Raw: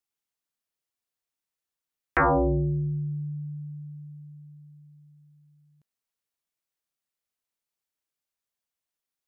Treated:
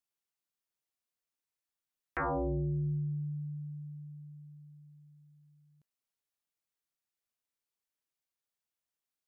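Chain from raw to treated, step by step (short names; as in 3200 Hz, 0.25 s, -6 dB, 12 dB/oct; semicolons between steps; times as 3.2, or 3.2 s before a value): limiter -25 dBFS, peak gain reduction 9 dB; gain -4 dB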